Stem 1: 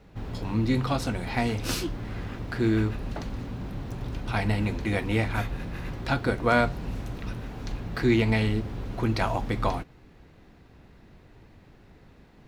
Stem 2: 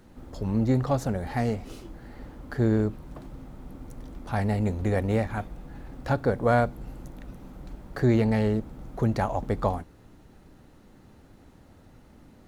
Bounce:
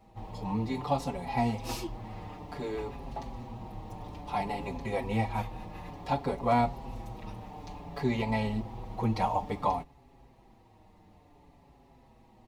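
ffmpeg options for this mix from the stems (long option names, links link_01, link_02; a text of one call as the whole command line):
ffmpeg -i stem1.wav -i stem2.wav -filter_complex "[0:a]equalizer=frequency=850:width_type=o:width=0.76:gain=13.5,volume=-5.5dB[link_01];[1:a]volume=-8.5dB[link_02];[link_01][link_02]amix=inputs=2:normalize=0,equalizer=frequency=1500:width_type=o:width=0.27:gain=-14.5,asplit=2[link_03][link_04];[link_04]adelay=5.8,afreqshift=-0.57[link_05];[link_03][link_05]amix=inputs=2:normalize=1" out.wav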